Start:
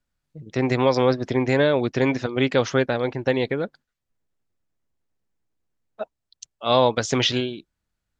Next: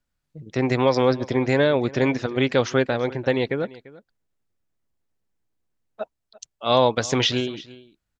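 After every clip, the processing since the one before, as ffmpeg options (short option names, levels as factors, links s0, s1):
-af "aecho=1:1:343:0.1"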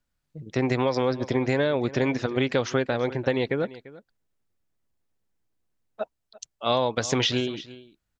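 -af "acompressor=threshold=0.112:ratio=6"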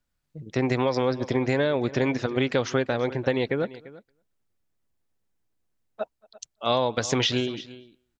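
-filter_complex "[0:a]asplit=2[s0][s1];[s1]adelay=227.4,volume=0.0447,highshelf=f=4000:g=-5.12[s2];[s0][s2]amix=inputs=2:normalize=0"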